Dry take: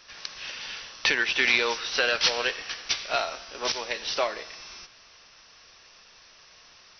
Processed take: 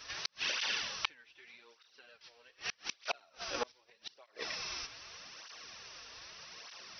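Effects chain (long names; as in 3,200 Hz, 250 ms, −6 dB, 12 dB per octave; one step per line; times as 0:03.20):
gate with flip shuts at −23 dBFS, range −37 dB
through-zero flanger with one copy inverted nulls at 0.82 Hz, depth 5.8 ms
level +5.5 dB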